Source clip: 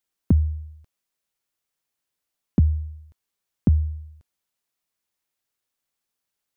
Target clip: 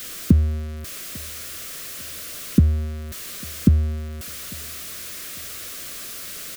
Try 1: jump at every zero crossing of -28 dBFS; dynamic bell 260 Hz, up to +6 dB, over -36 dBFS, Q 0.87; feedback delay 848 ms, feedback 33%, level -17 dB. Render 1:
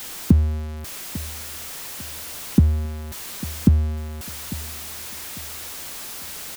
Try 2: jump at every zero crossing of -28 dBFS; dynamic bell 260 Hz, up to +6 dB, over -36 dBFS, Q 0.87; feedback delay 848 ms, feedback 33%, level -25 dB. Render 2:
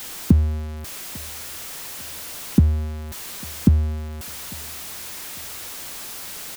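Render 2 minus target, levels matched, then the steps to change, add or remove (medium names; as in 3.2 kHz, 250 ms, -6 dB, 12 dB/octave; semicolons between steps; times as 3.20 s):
1 kHz band +4.0 dB
add after dynamic bell: Butterworth band-stop 870 Hz, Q 2.3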